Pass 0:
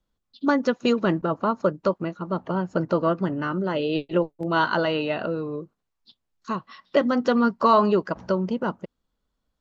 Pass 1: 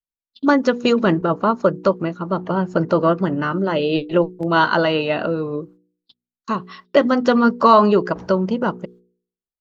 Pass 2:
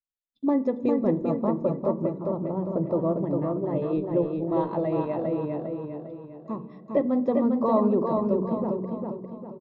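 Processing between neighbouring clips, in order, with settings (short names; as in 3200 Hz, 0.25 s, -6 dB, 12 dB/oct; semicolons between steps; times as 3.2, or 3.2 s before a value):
gate -50 dBFS, range -32 dB; de-hum 60.41 Hz, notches 8; gain +6 dB
running mean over 30 samples; feedback echo 0.402 s, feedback 43%, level -4 dB; on a send at -15.5 dB: reverb RT60 1.2 s, pre-delay 3 ms; on the sum: gain -7 dB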